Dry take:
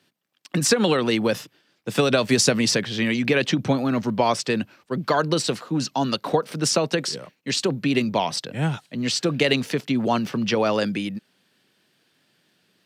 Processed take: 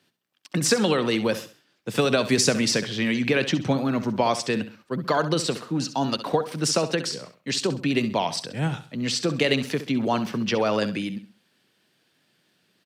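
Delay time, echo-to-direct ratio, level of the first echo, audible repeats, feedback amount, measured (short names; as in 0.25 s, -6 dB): 66 ms, -12.0 dB, -12.5 dB, 3, 34%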